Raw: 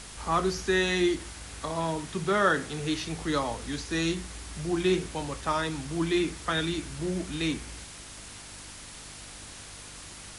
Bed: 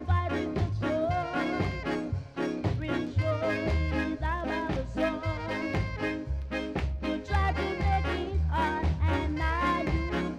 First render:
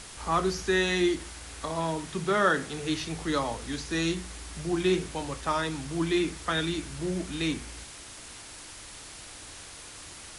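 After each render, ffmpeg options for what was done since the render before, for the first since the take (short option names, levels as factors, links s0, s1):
-af "bandreject=f=50:t=h:w=4,bandreject=f=100:t=h:w=4,bandreject=f=150:t=h:w=4,bandreject=f=200:t=h:w=4,bandreject=f=250:t=h:w=4"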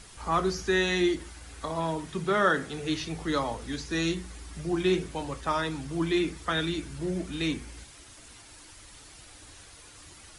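-af "afftdn=nr=8:nf=-45"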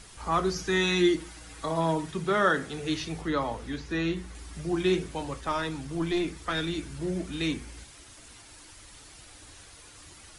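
-filter_complex "[0:a]asettb=1/sr,asplit=3[s0][s1][s2];[s0]atrim=end=0.554[s3];[s1]atrim=start=0.55:end=2.11,asetpts=PTS-STARTPTS,afade=t=in:d=0.004:c=qsin,afade=t=out:st=1.556:d=0.004:c=qsin,aecho=1:1:6.3:0.66,atrim=end_sample=68796[s4];[s2]atrim=start=2.106[s5];[s3][s4]acrossfade=d=0.004:c1=hsin:c2=qsin[s6];[s6][s5]acrossfade=d=0.004:c1=qsin:c2=hsin,asettb=1/sr,asplit=3[s7][s8][s9];[s7]atrim=end=3.214[s10];[s8]atrim=start=3.21:end=4.35,asetpts=PTS-STARTPTS,afade=t=in:d=0.004:c=qsin,afade=t=out:st=1.136:d=0.004:c=qsin,acrossover=split=3400[s11][s12];[s12]acompressor=threshold=0.00224:ratio=4:attack=1:release=60[s13];[s11][s13]amix=inputs=2:normalize=0[s14];[s9]atrim=start=4.346[s15];[s10][s14]acrossfade=d=0.004:c1=hsin:c2=qsin[s16];[s16][s15]acrossfade=d=0.004:c1=qsin:c2=hsin,asettb=1/sr,asplit=3[s17][s18][s19];[s17]atrim=end=5.394[s20];[s18]atrim=start=5.39:end=6.76,asetpts=PTS-STARTPTS,afade=t=in:d=0.004:c=qsin,afade=t=out:st=1.366:d=0.004:c=qsin,aeval=exprs='(tanh(8.91*val(0)+0.3)-tanh(0.3))/8.91':c=same[s21];[s19]atrim=start=6.756[s22];[s20][s21]acrossfade=d=0.004:c1=hsin:c2=qsin[s23];[s23][s22]acrossfade=d=0.004:c1=qsin:c2=hsin"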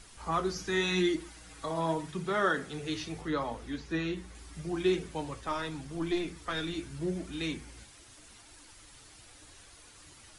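-af "flanger=delay=2.5:depth=7.7:regen=60:speed=0.82:shape=triangular"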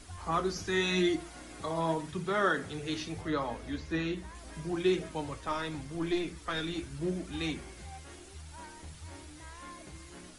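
-filter_complex "[1:a]volume=0.0944[s0];[0:a][s0]amix=inputs=2:normalize=0"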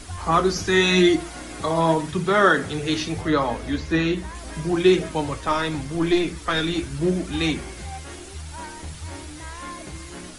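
-af "volume=3.76"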